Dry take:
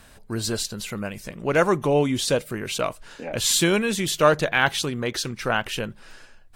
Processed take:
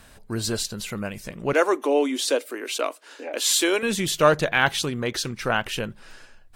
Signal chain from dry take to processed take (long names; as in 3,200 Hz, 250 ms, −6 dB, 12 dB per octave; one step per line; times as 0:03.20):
0:01.53–0:03.83: Chebyshev high-pass filter 270 Hz, order 5